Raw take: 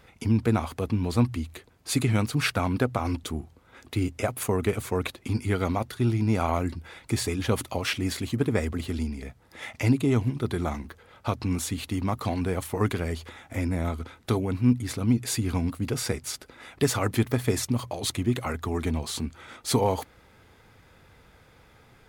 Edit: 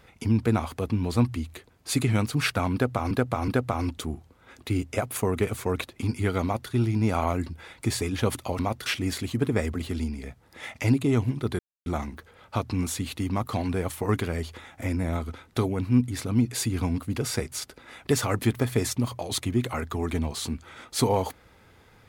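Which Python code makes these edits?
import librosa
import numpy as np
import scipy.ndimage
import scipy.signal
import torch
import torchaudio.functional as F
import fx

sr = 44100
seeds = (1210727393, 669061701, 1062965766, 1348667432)

y = fx.edit(x, sr, fx.repeat(start_s=2.74, length_s=0.37, count=3),
    fx.duplicate(start_s=5.69, length_s=0.27, to_s=7.85),
    fx.insert_silence(at_s=10.58, length_s=0.27), tone=tone)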